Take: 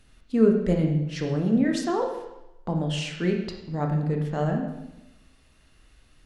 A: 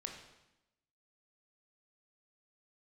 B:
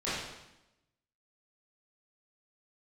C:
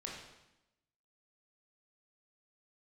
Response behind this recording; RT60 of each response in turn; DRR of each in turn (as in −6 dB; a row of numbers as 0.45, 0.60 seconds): A; 0.90, 0.90, 0.90 seconds; 2.0, −12.5, −3.0 decibels